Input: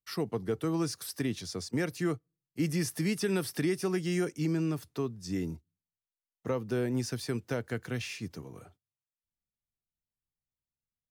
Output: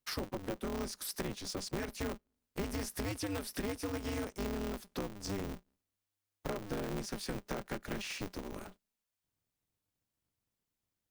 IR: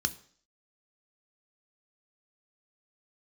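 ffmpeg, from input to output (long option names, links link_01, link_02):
-af "acompressor=threshold=-43dB:ratio=4,aeval=exprs='val(0)*sgn(sin(2*PI*100*n/s))':channel_layout=same,volume=5.5dB"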